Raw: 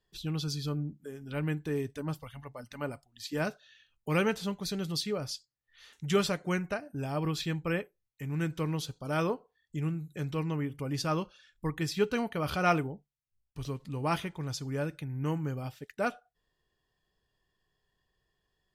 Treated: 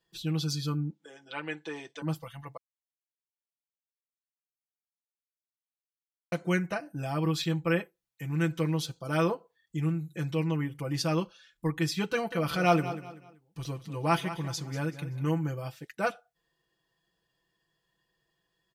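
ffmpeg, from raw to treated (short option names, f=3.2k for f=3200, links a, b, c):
-filter_complex "[0:a]asettb=1/sr,asplit=3[a][b][c];[a]atrim=end=0.904[d];[b]atrim=start=0.9:end=2.02,asetpts=PTS-STARTPTS,afade=t=in:d=0.004:c=qsin,afade=t=out:st=1.116:d=0.004:c=qsin,highpass=470,equalizer=f=550:t=q:w=4:g=3,equalizer=f=870:t=q:w=4:g=5,equalizer=f=3.4k:t=q:w=4:g=6,lowpass=f=7.1k:w=0.5412,lowpass=f=7.1k:w=1.3066[e];[c]atrim=start=2.016[f];[d][e]acrossfade=d=0.004:c1=hsin:c2=qsin[g];[g][f]acrossfade=d=0.004:c1=qsin:c2=hsin,asettb=1/sr,asplit=3[h][i][j];[h]atrim=end=12.064[k];[i]atrim=start=12.06:end=15.27,asetpts=PTS-STARTPTS,afade=t=in:d=0.004:c=qsin,afade=t=out:st=3.206:d=0.004:c=qsin,aecho=1:1:191|382|573:0.224|0.0716|0.0229,atrim=end_sample=141561[l];[j]atrim=start=15.266[m];[k][l]acrossfade=d=0.004:c1=hsin:c2=qsin[n];[n][m]acrossfade=d=0.004:c1=qsin:c2=hsin,asplit=3[o][p][q];[o]atrim=end=2.57,asetpts=PTS-STARTPTS,afade=t=out:st=2.566:d=0.004:c=hsin[r];[p]atrim=start=2.57:end=6.32,asetpts=PTS-STARTPTS,volume=0[s];[q]atrim=start=6.32,asetpts=PTS-STARTPTS,afade=t=in:d=0.004:c=hsin[t];[r][s][t]concat=n=3:v=0:a=1,highpass=f=130:p=1,aecho=1:1:6:0.95"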